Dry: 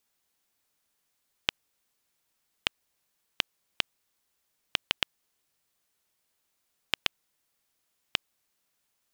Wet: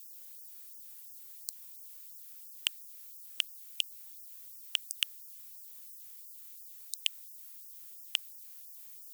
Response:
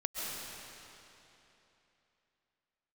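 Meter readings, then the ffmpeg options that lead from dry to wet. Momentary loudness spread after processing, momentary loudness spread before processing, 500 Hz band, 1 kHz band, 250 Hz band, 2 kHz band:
12 LU, 3 LU, below −40 dB, −18.5 dB, below −40 dB, −6.5 dB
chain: -af "aemphasis=mode=production:type=75fm,asoftclip=type=tanh:threshold=-22.5dB,afftfilt=real='re*gte(b*sr/1024,800*pow(4800/800,0.5+0.5*sin(2*PI*2.9*pts/sr)))':imag='im*gte(b*sr/1024,800*pow(4800/800,0.5+0.5*sin(2*PI*2.9*pts/sr)))':win_size=1024:overlap=0.75,volume=9.5dB"

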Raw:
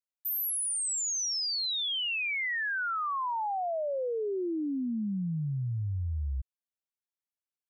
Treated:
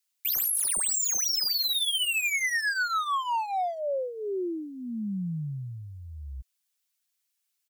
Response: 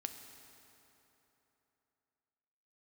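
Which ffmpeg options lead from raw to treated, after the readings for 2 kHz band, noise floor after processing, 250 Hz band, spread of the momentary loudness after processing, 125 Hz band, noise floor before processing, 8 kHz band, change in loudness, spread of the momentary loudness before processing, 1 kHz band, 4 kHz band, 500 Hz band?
+4.0 dB, −79 dBFS, −1.0 dB, 18 LU, −3.5 dB, below −85 dBFS, +4.5 dB, +4.0 dB, 5 LU, +3.0 dB, +4.0 dB, +0.5 dB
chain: -af "tiltshelf=frequency=1300:gain=-10,volume=34.5dB,asoftclip=hard,volume=-34.5dB,aecho=1:1:5.4:0.56,volume=6.5dB"

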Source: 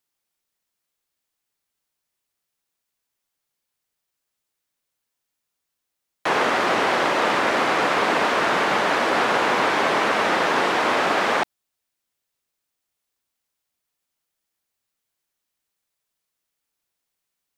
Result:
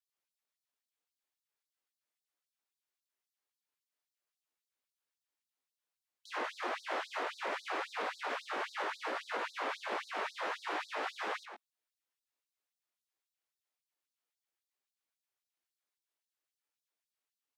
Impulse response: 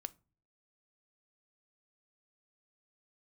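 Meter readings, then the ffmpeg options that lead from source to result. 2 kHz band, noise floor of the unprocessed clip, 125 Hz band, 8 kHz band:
−18.0 dB, −81 dBFS, below −35 dB, −19.5 dB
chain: -filter_complex "[0:a]highshelf=frequency=4300:gain=-6,alimiter=limit=-19.5dB:level=0:latency=1:release=145,flanger=delay=18.5:depth=2:speed=1.6,asplit=2[link_01][link_02];[link_02]adelay=110.8,volume=-11dB,highshelf=frequency=4000:gain=-2.49[link_03];[link_01][link_03]amix=inputs=2:normalize=0,afftfilt=real='re*gte(b*sr/1024,210*pow(3800/210,0.5+0.5*sin(2*PI*3.7*pts/sr)))':imag='im*gte(b*sr/1024,210*pow(3800/210,0.5+0.5*sin(2*PI*3.7*pts/sr)))':win_size=1024:overlap=0.75,volume=-5dB"

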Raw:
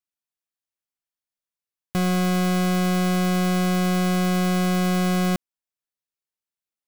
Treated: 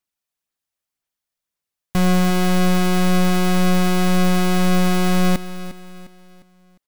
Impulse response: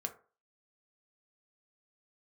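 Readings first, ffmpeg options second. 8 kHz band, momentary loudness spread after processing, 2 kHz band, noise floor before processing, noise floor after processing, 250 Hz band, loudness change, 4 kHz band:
+4.0 dB, 7 LU, +4.0 dB, below −85 dBFS, below −85 dBFS, +3.5 dB, +3.5 dB, +4.5 dB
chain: -af "aphaser=in_gain=1:out_gain=1:delay=1.7:decay=0.27:speed=1.9:type=sinusoidal,aeval=exprs='clip(val(0),-1,0.0422)':channel_layout=same,aecho=1:1:354|708|1062|1416:0.2|0.0798|0.0319|0.0128,volume=6dB"

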